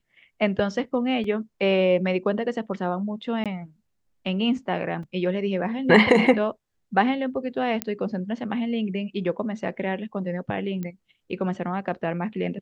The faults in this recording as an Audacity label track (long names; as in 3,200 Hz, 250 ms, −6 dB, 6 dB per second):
1.240000	1.240000	drop-out 3.5 ms
3.440000	3.460000	drop-out 17 ms
5.030000	5.030000	drop-out 3.5 ms
7.820000	7.820000	click −8 dBFS
10.830000	10.830000	click −20 dBFS